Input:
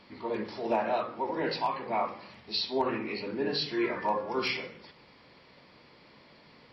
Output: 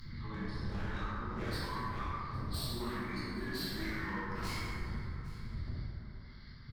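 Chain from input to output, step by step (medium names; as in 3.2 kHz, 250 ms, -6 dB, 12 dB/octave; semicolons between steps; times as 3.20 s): wind noise 110 Hz -36 dBFS; gate -43 dBFS, range -24 dB; high-order bell 510 Hz -10 dB; upward compressor, threshold -42 dBFS; static phaser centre 2.7 kHz, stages 6; wavefolder -29 dBFS; formant-preserving pitch shift -1.5 st; saturation -37 dBFS, distortion -11 dB; delay 810 ms -22 dB; plate-style reverb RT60 2.6 s, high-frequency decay 0.4×, DRR -8 dB; tape noise reduction on one side only encoder only; trim -5.5 dB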